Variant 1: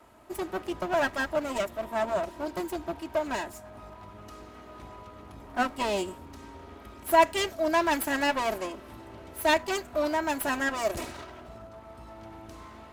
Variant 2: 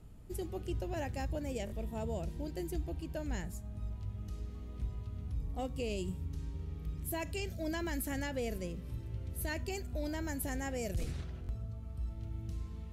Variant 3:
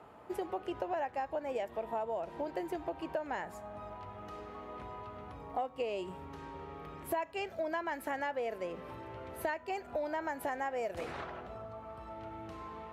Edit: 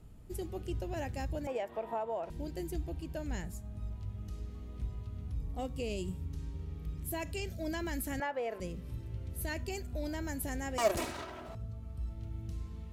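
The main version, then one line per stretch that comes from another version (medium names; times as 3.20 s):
2
1.47–2.30 s: from 3
8.20–8.60 s: from 3
10.78–11.55 s: from 1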